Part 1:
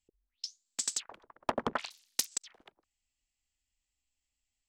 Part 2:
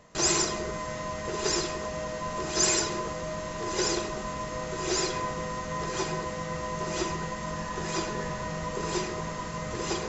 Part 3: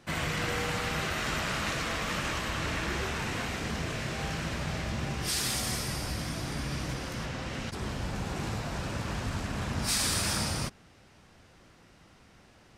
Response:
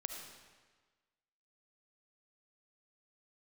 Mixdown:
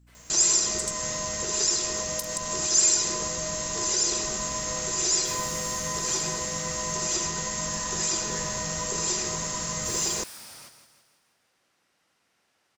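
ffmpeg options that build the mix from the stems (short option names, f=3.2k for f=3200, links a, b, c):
-filter_complex "[0:a]aeval=exprs='val(0)+0.002*(sin(2*PI*60*n/s)+sin(2*PI*2*60*n/s)/2+sin(2*PI*3*60*n/s)/3+sin(2*PI*4*60*n/s)/4+sin(2*PI*5*60*n/s)/5)':c=same,volume=-5.5dB,asplit=3[a][b][c];[a]atrim=end=0.91,asetpts=PTS-STARTPTS,afade=t=out:st=0.906:d=0.004:c=hsin[d];[b]atrim=start=0.91:end=1.96,asetpts=PTS-STARTPTS,volume=0[e];[c]atrim=start=1.96,asetpts=PTS-STARTPTS,afade=t=in:d=0.004:c=hsin[f];[d][e][f]concat=n=3:v=0:a=1,asplit=2[g][h];[h]volume=-12dB[i];[1:a]aemphasis=mode=production:type=75kf,adelay=150,volume=-5dB,asplit=2[j][k];[k]volume=-5dB[l];[2:a]highpass=f=750:p=1,volume=34dB,asoftclip=hard,volume=-34dB,volume=-11dB,afade=t=in:st=4.18:d=0.29:silence=0.251189,asplit=2[m][n];[n]volume=-9.5dB[o];[g][j]amix=inputs=2:normalize=0,bass=f=250:g=2,treble=f=4k:g=8,alimiter=limit=-22.5dB:level=0:latency=1:release=151,volume=0dB[p];[3:a]atrim=start_sample=2205[q];[i][l]amix=inputs=2:normalize=0[r];[r][q]afir=irnorm=-1:irlink=0[s];[o]aecho=0:1:165|330|495|660|825|990|1155:1|0.5|0.25|0.125|0.0625|0.0312|0.0156[t];[m][p][s][t]amix=inputs=4:normalize=0,highshelf=f=8.2k:g=8.5"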